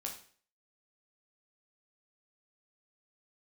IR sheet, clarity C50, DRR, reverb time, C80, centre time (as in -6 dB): 8.0 dB, 0.0 dB, 0.45 s, 12.5 dB, 21 ms